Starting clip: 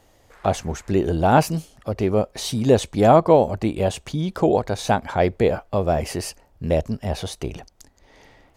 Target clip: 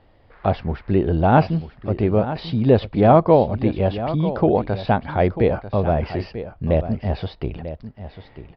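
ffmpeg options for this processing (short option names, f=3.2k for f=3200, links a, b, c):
-filter_complex "[0:a]bass=f=250:g=4,treble=f=4k:g=-12,asplit=2[a][b];[b]aecho=0:1:943:0.237[c];[a][c]amix=inputs=2:normalize=0,aresample=11025,aresample=44100"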